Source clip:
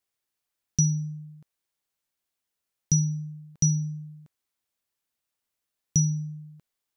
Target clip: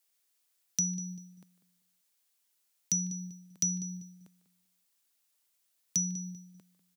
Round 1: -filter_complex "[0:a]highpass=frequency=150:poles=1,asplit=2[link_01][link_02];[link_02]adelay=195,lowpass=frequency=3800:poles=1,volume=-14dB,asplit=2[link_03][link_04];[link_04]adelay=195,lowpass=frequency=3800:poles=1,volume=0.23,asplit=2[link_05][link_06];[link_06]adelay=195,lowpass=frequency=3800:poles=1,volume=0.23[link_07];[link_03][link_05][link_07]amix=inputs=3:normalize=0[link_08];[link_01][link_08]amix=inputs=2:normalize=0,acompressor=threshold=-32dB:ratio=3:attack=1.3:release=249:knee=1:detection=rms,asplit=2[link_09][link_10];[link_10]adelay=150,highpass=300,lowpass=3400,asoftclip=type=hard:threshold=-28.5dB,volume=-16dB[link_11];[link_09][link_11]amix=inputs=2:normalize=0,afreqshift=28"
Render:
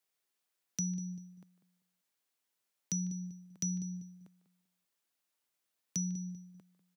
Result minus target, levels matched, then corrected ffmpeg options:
8,000 Hz band −2.5 dB
-filter_complex "[0:a]highpass=frequency=150:poles=1,asplit=2[link_01][link_02];[link_02]adelay=195,lowpass=frequency=3800:poles=1,volume=-14dB,asplit=2[link_03][link_04];[link_04]adelay=195,lowpass=frequency=3800:poles=1,volume=0.23,asplit=2[link_05][link_06];[link_06]adelay=195,lowpass=frequency=3800:poles=1,volume=0.23[link_07];[link_03][link_05][link_07]amix=inputs=3:normalize=0[link_08];[link_01][link_08]amix=inputs=2:normalize=0,acompressor=threshold=-32dB:ratio=3:attack=1.3:release=249:knee=1:detection=rms,highshelf=frequency=3100:gain=10.5,asplit=2[link_09][link_10];[link_10]adelay=150,highpass=300,lowpass=3400,asoftclip=type=hard:threshold=-28.5dB,volume=-16dB[link_11];[link_09][link_11]amix=inputs=2:normalize=0,afreqshift=28"

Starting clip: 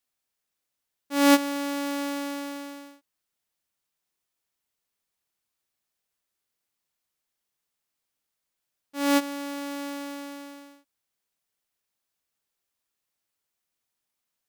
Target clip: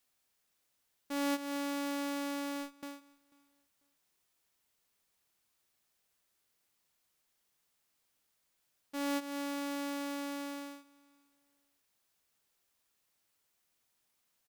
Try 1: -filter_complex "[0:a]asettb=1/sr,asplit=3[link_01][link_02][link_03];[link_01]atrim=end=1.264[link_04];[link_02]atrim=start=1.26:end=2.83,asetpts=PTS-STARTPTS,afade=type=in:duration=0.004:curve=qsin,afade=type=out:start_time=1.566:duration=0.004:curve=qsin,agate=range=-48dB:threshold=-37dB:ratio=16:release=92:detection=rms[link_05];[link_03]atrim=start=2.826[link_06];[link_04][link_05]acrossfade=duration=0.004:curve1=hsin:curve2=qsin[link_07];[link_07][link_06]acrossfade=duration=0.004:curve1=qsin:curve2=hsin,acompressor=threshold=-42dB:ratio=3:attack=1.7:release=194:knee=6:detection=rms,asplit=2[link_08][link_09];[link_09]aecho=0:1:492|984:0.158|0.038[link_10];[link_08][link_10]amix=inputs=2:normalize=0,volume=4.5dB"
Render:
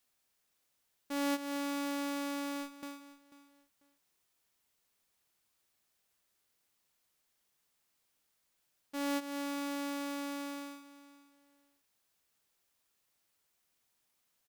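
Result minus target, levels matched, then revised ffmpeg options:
echo-to-direct +9 dB
-filter_complex "[0:a]asettb=1/sr,asplit=3[link_01][link_02][link_03];[link_01]atrim=end=1.264[link_04];[link_02]atrim=start=1.26:end=2.83,asetpts=PTS-STARTPTS,afade=type=in:duration=0.004:curve=qsin,afade=type=out:start_time=1.566:duration=0.004:curve=qsin,agate=range=-48dB:threshold=-37dB:ratio=16:release=92:detection=rms[link_05];[link_03]atrim=start=2.826[link_06];[link_04][link_05]acrossfade=duration=0.004:curve1=hsin:curve2=qsin[link_07];[link_07][link_06]acrossfade=duration=0.004:curve1=qsin:curve2=hsin,acompressor=threshold=-42dB:ratio=3:attack=1.7:release=194:knee=6:detection=rms,asplit=2[link_08][link_09];[link_09]aecho=0:1:492|984:0.0562|0.0135[link_10];[link_08][link_10]amix=inputs=2:normalize=0,volume=4.5dB"

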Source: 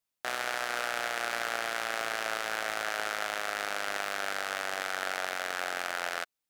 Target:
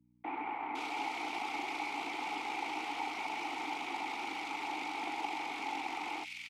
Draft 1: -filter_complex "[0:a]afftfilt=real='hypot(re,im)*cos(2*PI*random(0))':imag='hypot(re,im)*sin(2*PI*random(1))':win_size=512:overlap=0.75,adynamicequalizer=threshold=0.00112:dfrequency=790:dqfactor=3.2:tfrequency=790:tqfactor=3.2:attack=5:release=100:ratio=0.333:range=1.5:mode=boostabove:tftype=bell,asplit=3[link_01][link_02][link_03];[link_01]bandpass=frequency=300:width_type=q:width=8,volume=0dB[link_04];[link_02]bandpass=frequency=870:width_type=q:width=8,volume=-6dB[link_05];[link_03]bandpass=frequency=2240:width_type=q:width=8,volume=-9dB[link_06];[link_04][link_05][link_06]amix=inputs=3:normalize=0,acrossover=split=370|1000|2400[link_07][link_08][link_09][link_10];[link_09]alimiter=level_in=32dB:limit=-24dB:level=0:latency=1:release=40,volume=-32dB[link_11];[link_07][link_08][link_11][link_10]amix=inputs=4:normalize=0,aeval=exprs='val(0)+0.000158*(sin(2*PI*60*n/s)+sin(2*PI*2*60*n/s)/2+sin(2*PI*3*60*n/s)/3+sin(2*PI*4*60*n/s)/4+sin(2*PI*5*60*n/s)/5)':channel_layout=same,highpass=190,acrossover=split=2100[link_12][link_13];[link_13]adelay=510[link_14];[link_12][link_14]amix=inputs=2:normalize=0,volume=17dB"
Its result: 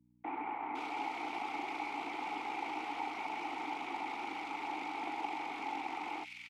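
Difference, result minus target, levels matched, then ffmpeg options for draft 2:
4,000 Hz band −4.0 dB
-filter_complex "[0:a]afftfilt=real='hypot(re,im)*cos(2*PI*random(0))':imag='hypot(re,im)*sin(2*PI*random(1))':win_size=512:overlap=0.75,adynamicequalizer=threshold=0.00112:dfrequency=790:dqfactor=3.2:tfrequency=790:tqfactor=3.2:attack=5:release=100:ratio=0.333:range=1.5:mode=boostabove:tftype=bell,asplit=3[link_01][link_02][link_03];[link_01]bandpass=frequency=300:width_type=q:width=8,volume=0dB[link_04];[link_02]bandpass=frequency=870:width_type=q:width=8,volume=-6dB[link_05];[link_03]bandpass=frequency=2240:width_type=q:width=8,volume=-9dB[link_06];[link_04][link_05][link_06]amix=inputs=3:normalize=0,highshelf=frequency=2200:gain=8.5,acrossover=split=370|1000|2400[link_07][link_08][link_09][link_10];[link_09]alimiter=level_in=32dB:limit=-24dB:level=0:latency=1:release=40,volume=-32dB[link_11];[link_07][link_08][link_11][link_10]amix=inputs=4:normalize=0,aeval=exprs='val(0)+0.000158*(sin(2*PI*60*n/s)+sin(2*PI*2*60*n/s)/2+sin(2*PI*3*60*n/s)/3+sin(2*PI*4*60*n/s)/4+sin(2*PI*5*60*n/s)/5)':channel_layout=same,highpass=190,acrossover=split=2100[link_12][link_13];[link_13]adelay=510[link_14];[link_12][link_14]amix=inputs=2:normalize=0,volume=17dB"

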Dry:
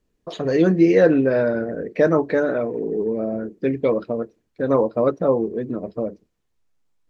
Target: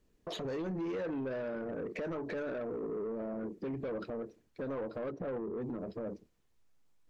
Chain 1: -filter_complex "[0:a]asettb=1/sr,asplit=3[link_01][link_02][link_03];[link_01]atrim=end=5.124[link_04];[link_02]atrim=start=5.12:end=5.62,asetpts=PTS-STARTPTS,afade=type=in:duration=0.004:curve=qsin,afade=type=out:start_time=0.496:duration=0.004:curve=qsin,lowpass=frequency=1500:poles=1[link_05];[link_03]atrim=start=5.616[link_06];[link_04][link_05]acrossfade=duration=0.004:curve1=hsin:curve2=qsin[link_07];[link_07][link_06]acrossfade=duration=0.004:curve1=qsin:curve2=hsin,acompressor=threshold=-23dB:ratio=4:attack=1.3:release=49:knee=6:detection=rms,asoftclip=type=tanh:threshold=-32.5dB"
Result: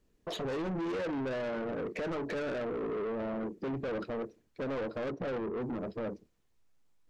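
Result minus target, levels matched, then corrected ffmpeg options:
downward compressor: peak gain reduction −7.5 dB
-filter_complex "[0:a]asettb=1/sr,asplit=3[link_01][link_02][link_03];[link_01]atrim=end=5.124[link_04];[link_02]atrim=start=5.12:end=5.62,asetpts=PTS-STARTPTS,afade=type=in:duration=0.004:curve=qsin,afade=type=out:start_time=0.496:duration=0.004:curve=qsin,lowpass=frequency=1500:poles=1[link_05];[link_03]atrim=start=5.616[link_06];[link_04][link_05]acrossfade=duration=0.004:curve1=hsin:curve2=qsin[link_07];[link_07][link_06]acrossfade=duration=0.004:curve1=qsin:curve2=hsin,acompressor=threshold=-33dB:ratio=4:attack=1.3:release=49:knee=6:detection=rms,asoftclip=type=tanh:threshold=-32.5dB"

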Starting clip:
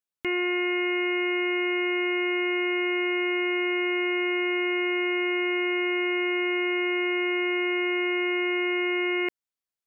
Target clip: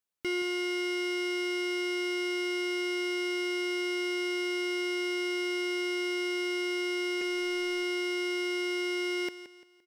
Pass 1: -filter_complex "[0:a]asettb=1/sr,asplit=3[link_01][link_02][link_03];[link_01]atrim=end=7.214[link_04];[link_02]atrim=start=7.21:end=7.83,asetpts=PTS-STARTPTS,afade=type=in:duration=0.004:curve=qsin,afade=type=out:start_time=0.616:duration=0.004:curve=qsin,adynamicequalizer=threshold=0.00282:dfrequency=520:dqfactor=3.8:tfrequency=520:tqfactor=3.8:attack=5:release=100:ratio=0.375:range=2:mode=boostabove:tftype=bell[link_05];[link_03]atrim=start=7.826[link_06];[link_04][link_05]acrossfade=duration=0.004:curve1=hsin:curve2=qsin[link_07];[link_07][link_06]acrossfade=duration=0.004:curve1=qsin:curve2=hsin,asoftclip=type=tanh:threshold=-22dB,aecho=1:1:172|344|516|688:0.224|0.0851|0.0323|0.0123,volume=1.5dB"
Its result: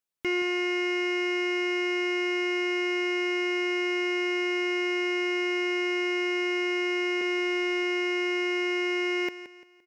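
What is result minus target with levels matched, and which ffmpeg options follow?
soft clipping: distortion −8 dB
-filter_complex "[0:a]asettb=1/sr,asplit=3[link_01][link_02][link_03];[link_01]atrim=end=7.214[link_04];[link_02]atrim=start=7.21:end=7.83,asetpts=PTS-STARTPTS,afade=type=in:duration=0.004:curve=qsin,afade=type=out:start_time=0.616:duration=0.004:curve=qsin,adynamicequalizer=threshold=0.00282:dfrequency=520:dqfactor=3.8:tfrequency=520:tqfactor=3.8:attack=5:release=100:ratio=0.375:range=2:mode=boostabove:tftype=bell[link_05];[link_03]atrim=start=7.826[link_06];[link_04][link_05]acrossfade=duration=0.004:curve1=hsin:curve2=qsin[link_07];[link_07][link_06]acrossfade=duration=0.004:curve1=qsin:curve2=hsin,asoftclip=type=tanh:threshold=-29.5dB,aecho=1:1:172|344|516|688:0.224|0.0851|0.0323|0.0123,volume=1.5dB"

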